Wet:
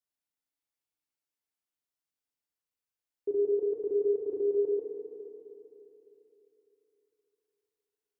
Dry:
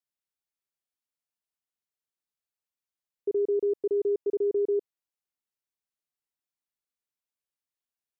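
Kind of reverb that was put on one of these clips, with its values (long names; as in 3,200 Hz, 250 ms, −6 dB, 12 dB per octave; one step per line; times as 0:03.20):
feedback delay network reverb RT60 3.4 s, high-frequency decay 0.7×, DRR 0.5 dB
level −3.5 dB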